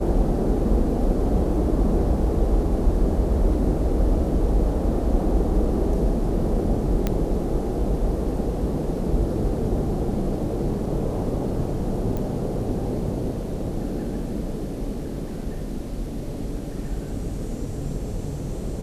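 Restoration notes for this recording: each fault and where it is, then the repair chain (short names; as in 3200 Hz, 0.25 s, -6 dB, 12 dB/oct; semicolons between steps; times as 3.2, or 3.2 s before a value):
7.07 pop -9 dBFS
12.17 pop -17 dBFS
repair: de-click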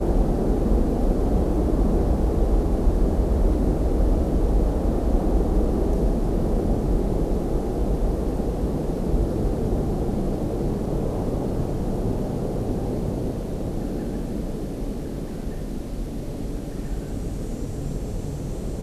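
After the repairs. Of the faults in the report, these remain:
none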